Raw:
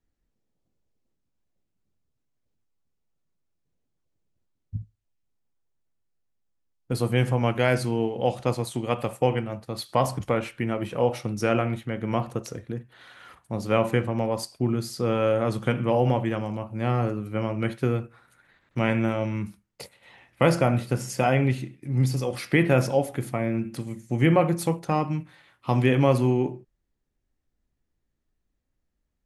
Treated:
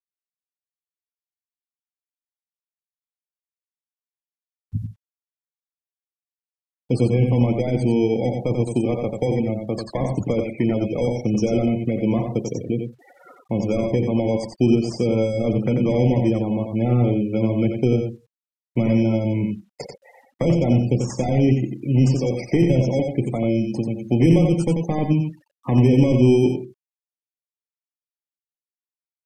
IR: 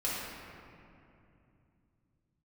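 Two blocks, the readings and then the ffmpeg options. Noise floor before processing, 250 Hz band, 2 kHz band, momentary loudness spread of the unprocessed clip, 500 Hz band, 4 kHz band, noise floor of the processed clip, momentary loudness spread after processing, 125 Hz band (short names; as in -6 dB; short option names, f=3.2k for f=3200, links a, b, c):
-78 dBFS, +8.0 dB, -5.5 dB, 13 LU, +3.5 dB, -1.0 dB, under -85 dBFS, 10 LU, +5.5 dB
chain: -filter_complex "[0:a]asplit=2[a][b];[b]highpass=f=720:p=1,volume=23dB,asoftclip=type=tanh:threshold=-5dB[c];[a][c]amix=inputs=2:normalize=0,lowpass=f=1k:p=1,volume=-6dB,firequalizer=gain_entry='entry(260,0);entry(1500,-13);entry(2200,2);entry(3400,-13);entry(5100,9);entry(8200,13);entry(12000,-8)':delay=0.05:min_phase=1,acrossover=split=370[d][e];[e]acompressor=threshold=-33dB:ratio=5[f];[d][f]amix=inputs=2:normalize=0,asplit=2[g][h];[h]acrusher=samples=16:mix=1:aa=0.000001,volume=-4dB[i];[g][i]amix=inputs=2:normalize=0,afftfilt=real='re*gte(hypot(re,im),0.0251)':imag='im*gte(hypot(re,im),0.0251)':win_size=1024:overlap=0.75,acrusher=bits=10:mix=0:aa=0.000001,asplit=2[j][k];[k]aecho=0:1:90:0.531[l];[j][l]amix=inputs=2:normalize=0,aresample=32000,aresample=44100,adynamicequalizer=threshold=0.00355:dfrequency=6400:dqfactor=0.7:tfrequency=6400:tqfactor=0.7:attack=5:release=100:ratio=0.375:range=2.5:mode=cutabove:tftype=highshelf"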